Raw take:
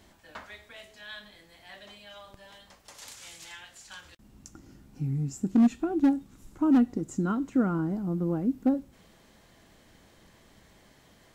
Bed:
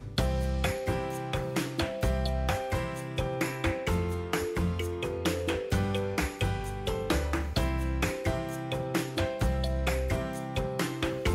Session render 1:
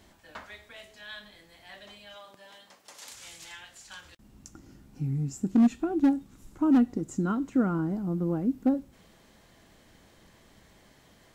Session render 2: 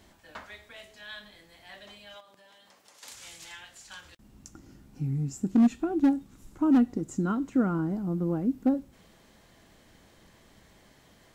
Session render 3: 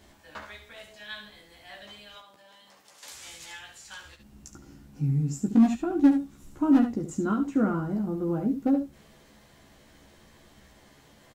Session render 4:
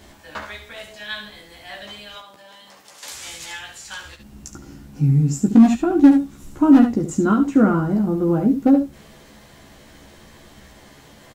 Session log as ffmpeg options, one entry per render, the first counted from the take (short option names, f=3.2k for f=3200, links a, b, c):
-filter_complex "[0:a]asettb=1/sr,asplit=3[a][b][c];[a]atrim=end=2.164[d];[b]atrim=start=2.16:end=3.12,asetpts=PTS-STARTPTS,afade=t=in:d=0.004:c=qsin,afade=t=out:st=0.956:d=0.004:c=qsin,highpass=210[e];[c]atrim=start=3.116[f];[d][e]acrossfade=d=0.004:c1=hsin:c2=qsin[g];[g][f]acrossfade=d=0.004:c1=qsin:c2=hsin"
-filter_complex "[0:a]asettb=1/sr,asplit=3[a][b][c];[a]atrim=end=2.204[d];[b]atrim=start=2.2:end=3.03,asetpts=PTS-STARTPTS,afade=t=in:d=0.004:c=qsin,afade=t=out:st=0.826:d=0.004:c=qsin,acompressor=threshold=-54dB:ratio=4:attack=3.2:release=140:knee=1:detection=peak[e];[c]atrim=start=3.026[f];[d][e]acrossfade=d=0.004:c1=hsin:c2=qsin[g];[g][f]acrossfade=d=0.004:c1=qsin:c2=hsin"
-filter_complex "[0:a]asplit=2[a][b];[b]adelay=14,volume=-3.5dB[c];[a][c]amix=inputs=2:normalize=0,aecho=1:1:71:0.355"
-af "volume=9.5dB,alimiter=limit=-3dB:level=0:latency=1"